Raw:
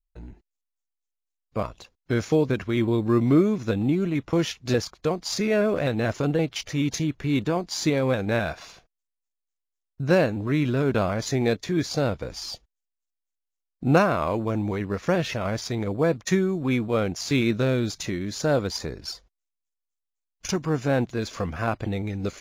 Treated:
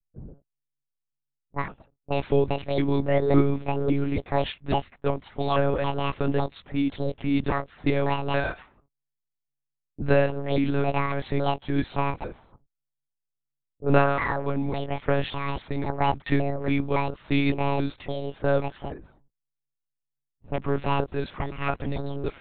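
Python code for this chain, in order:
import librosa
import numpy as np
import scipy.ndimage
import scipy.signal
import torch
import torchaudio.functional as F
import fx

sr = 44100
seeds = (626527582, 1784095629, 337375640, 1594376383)

y = fx.pitch_trill(x, sr, semitones=9.5, every_ms=278)
y = fx.lpc_monotone(y, sr, seeds[0], pitch_hz=140.0, order=10)
y = fx.env_lowpass(y, sr, base_hz=360.0, full_db=-21.5)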